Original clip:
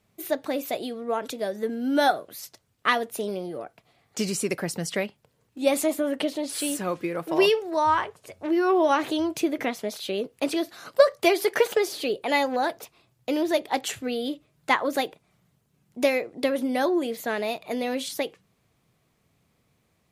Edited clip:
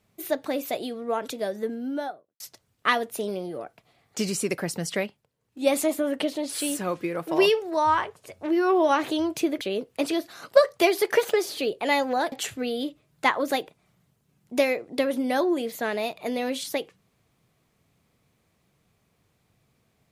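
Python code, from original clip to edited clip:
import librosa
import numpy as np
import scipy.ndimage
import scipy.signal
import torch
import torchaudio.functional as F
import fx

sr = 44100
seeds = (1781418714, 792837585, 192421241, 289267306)

y = fx.studio_fade_out(x, sr, start_s=1.45, length_s=0.95)
y = fx.edit(y, sr, fx.fade_down_up(start_s=5.03, length_s=0.63, db=-11.0, fade_s=0.25),
    fx.cut(start_s=9.61, length_s=0.43),
    fx.cut(start_s=12.75, length_s=1.02), tone=tone)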